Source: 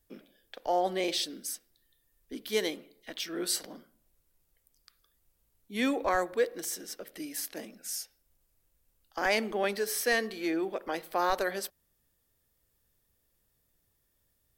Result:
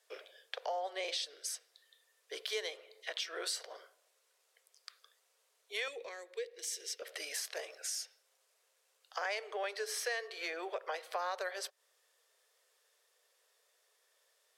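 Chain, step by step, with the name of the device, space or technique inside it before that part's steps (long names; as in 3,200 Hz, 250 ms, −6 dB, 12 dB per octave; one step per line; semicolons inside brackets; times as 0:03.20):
Butterworth high-pass 420 Hz 72 dB per octave
jukebox (low-pass filter 7,400 Hz 12 dB per octave; low shelf with overshoot 280 Hz +9.5 dB, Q 1.5; downward compressor 4 to 1, threshold −47 dBFS, peak gain reduction 19 dB)
notch filter 840 Hz, Q 15
0:05.88–0:07.02: flat-topped bell 960 Hz −14.5 dB
level +9 dB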